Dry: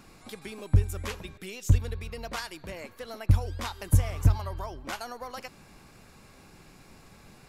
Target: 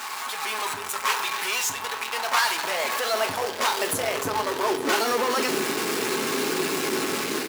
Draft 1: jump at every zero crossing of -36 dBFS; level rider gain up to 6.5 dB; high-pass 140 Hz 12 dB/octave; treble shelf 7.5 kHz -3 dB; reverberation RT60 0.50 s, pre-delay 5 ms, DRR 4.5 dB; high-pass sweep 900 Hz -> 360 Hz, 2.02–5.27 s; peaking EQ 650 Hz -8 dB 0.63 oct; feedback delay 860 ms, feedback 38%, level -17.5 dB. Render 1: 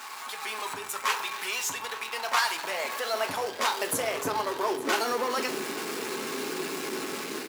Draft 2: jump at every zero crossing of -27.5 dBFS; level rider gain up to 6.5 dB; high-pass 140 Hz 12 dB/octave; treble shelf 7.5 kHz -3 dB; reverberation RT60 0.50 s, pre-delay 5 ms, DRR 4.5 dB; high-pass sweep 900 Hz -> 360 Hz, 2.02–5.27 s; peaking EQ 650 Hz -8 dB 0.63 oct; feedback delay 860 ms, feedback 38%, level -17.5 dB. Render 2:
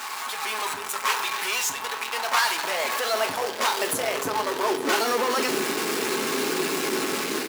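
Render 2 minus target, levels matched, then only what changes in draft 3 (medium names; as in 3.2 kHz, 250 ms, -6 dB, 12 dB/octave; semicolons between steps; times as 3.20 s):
125 Hz band -3.0 dB
remove: high-pass 140 Hz 12 dB/octave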